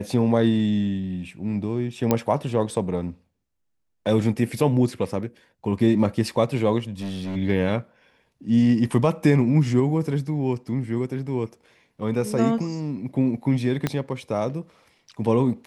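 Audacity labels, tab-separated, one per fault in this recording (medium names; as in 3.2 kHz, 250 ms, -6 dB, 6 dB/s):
2.110000	2.110000	pop -6 dBFS
7.000000	7.370000	clipped -26.5 dBFS
13.870000	13.870000	pop -9 dBFS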